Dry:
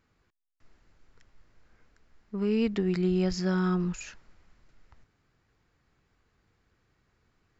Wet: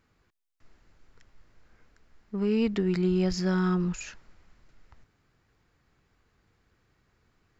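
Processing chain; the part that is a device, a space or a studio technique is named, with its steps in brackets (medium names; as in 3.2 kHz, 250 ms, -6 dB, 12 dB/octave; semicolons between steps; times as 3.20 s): parallel distortion (in parallel at -12 dB: hard clipper -30 dBFS, distortion -7 dB)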